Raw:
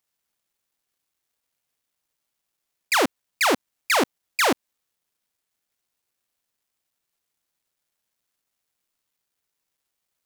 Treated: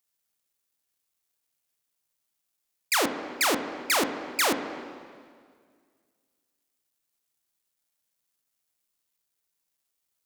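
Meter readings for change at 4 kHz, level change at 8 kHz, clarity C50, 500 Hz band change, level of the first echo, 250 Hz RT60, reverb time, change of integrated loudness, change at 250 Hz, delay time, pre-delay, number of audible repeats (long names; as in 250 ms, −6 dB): −2.5 dB, 0.0 dB, 12.0 dB, −4.5 dB, no echo audible, 2.1 s, 1.9 s, −3.5 dB, −3.5 dB, no echo audible, 7 ms, no echo audible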